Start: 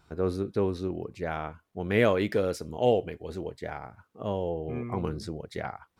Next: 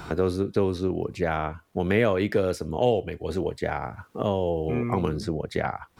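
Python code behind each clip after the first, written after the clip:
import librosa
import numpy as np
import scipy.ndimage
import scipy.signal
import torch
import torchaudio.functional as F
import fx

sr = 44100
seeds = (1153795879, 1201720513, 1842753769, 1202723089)

y = fx.band_squash(x, sr, depth_pct=70)
y = F.gain(torch.from_numpy(y), 4.5).numpy()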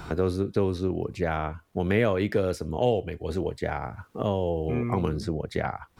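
y = fx.low_shelf(x, sr, hz=100.0, db=6.0)
y = F.gain(torch.from_numpy(y), -2.0).numpy()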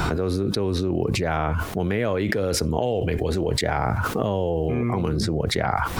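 y = fx.env_flatten(x, sr, amount_pct=100)
y = F.gain(torch.from_numpy(y), -3.0).numpy()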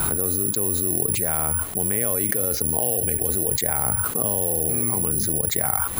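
y = (np.kron(scipy.signal.resample_poly(x, 1, 4), np.eye(4)[0]) * 4)[:len(x)]
y = F.gain(torch.from_numpy(y), -5.5).numpy()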